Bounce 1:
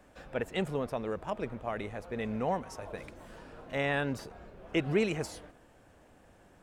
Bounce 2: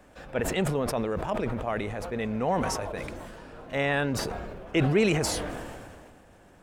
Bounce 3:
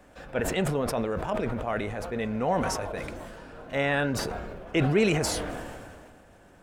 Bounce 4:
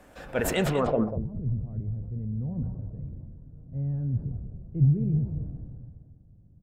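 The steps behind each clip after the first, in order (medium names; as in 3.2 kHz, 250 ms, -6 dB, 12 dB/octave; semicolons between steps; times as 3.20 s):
decay stretcher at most 28 dB/s; trim +4 dB
on a send at -1 dB: two resonant band-passes 950 Hz, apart 1.2 oct + reverberation, pre-delay 3 ms
low-pass sweep 14 kHz -> 130 Hz, 0.52–1.12 s; on a send: delay 194 ms -11 dB; on the sum: trim +1 dB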